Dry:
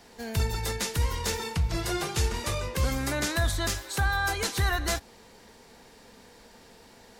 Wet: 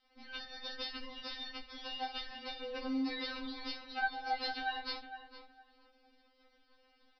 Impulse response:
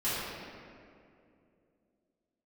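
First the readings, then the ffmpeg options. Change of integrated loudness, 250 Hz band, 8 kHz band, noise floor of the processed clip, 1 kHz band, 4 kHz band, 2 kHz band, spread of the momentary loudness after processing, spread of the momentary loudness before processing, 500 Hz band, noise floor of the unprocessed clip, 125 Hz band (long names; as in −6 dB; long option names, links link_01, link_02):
−11.0 dB, −6.0 dB, below −30 dB, −71 dBFS, −6.5 dB, −7.0 dB, −9.5 dB, 10 LU, 4 LU, −13.5 dB, −54 dBFS, below −40 dB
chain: -filter_complex "[0:a]lowshelf=frequency=77:gain=7.5,alimiter=limit=-17.5dB:level=0:latency=1:release=300,aresample=11025,aeval=exprs='sgn(val(0))*max(abs(val(0))-0.00335,0)':channel_layout=same,aresample=44100,asplit=2[link_01][link_02];[link_02]adelay=18,volume=-4.5dB[link_03];[link_01][link_03]amix=inputs=2:normalize=0,asplit=2[link_04][link_05];[link_05]adelay=459,lowpass=frequency=1700:poles=1,volume=-9dB,asplit=2[link_06][link_07];[link_07]adelay=459,lowpass=frequency=1700:poles=1,volume=0.24,asplit=2[link_08][link_09];[link_09]adelay=459,lowpass=frequency=1700:poles=1,volume=0.24[link_10];[link_06][link_08][link_10]amix=inputs=3:normalize=0[link_11];[link_04][link_11]amix=inputs=2:normalize=0,afftfilt=real='re*3.46*eq(mod(b,12),0)':imag='im*3.46*eq(mod(b,12),0)':win_size=2048:overlap=0.75,volume=-5dB"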